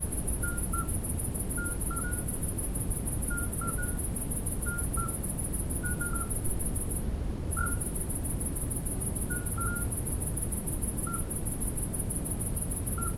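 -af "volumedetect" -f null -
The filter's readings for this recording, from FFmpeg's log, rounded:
mean_volume: -31.7 dB
max_volume: -17.0 dB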